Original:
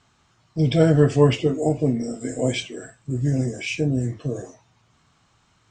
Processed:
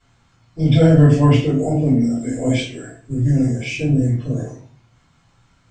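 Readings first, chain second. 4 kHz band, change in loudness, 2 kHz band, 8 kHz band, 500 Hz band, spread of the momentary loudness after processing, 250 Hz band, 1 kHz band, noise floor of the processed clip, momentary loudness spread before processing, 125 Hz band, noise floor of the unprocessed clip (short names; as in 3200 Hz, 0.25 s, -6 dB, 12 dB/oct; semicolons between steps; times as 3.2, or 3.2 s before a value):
+1.0 dB, +5.0 dB, +2.5 dB, 0.0 dB, 0.0 dB, 15 LU, +6.0 dB, +3.5 dB, -58 dBFS, 14 LU, +7.0 dB, -63 dBFS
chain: shoebox room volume 31 m³, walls mixed, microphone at 2.2 m; gain -10 dB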